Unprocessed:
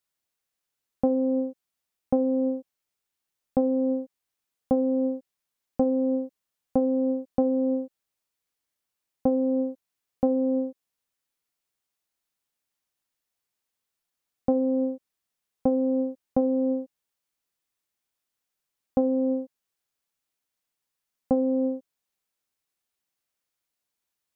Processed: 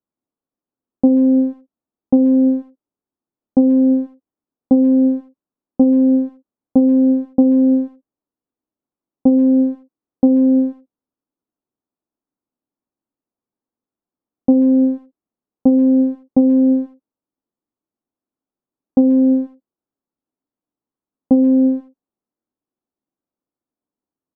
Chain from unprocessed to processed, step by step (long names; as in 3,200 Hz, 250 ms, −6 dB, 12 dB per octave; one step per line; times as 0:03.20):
low-pass filter 1,200 Hz 24 dB per octave
parametric band 270 Hz +14.5 dB 1.2 octaves
far-end echo of a speakerphone 130 ms, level −22 dB
level −1 dB